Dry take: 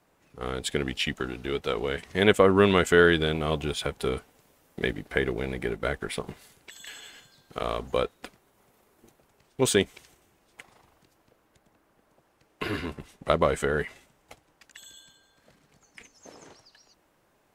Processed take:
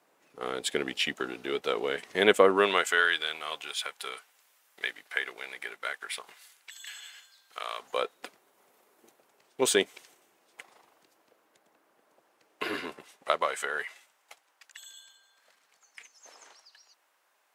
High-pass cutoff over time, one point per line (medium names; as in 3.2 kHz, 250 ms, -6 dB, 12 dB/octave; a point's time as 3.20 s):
2.43 s 320 Hz
3.05 s 1.2 kHz
7.75 s 1.2 kHz
8.18 s 360 Hz
12.78 s 360 Hz
13.47 s 900 Hz